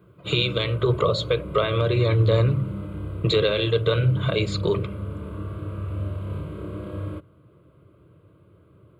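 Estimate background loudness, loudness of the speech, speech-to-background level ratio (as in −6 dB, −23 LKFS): −33.5 LKFS, −22.5 LKFS, 11.0 dB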